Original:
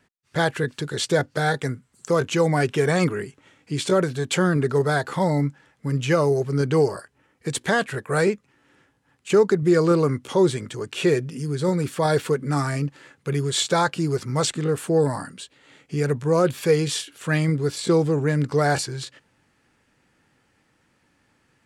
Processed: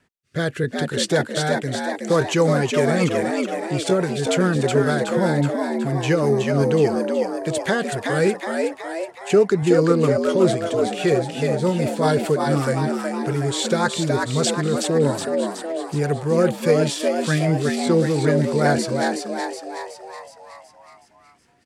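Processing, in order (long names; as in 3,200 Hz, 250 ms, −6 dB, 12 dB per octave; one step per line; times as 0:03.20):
rotating-speaker cabinet horn 0.75 Hz, later 5 Hz, at 0:02.24
echo with shifted repeats 371 ms, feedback 55%, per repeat +83 Hz, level −4 dB
level +2.5 dB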